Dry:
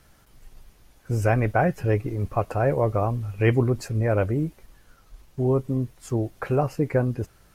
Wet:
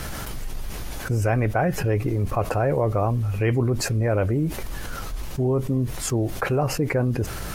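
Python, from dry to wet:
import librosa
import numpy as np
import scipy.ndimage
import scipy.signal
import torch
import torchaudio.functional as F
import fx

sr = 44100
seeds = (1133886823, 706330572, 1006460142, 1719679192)

y = fx.env_flatten(x, sr, amount_pct=70)
y = y * librosa.db_to_amplitude(-3.5)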